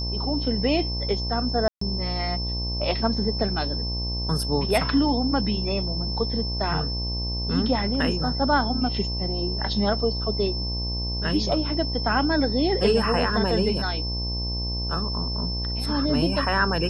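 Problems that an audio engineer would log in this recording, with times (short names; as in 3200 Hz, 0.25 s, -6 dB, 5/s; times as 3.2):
buzz 60 Hz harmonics 18 -29 dBFS
tone 5300 Hz -30 dBFS
1.68–1.81 gap 0.134 s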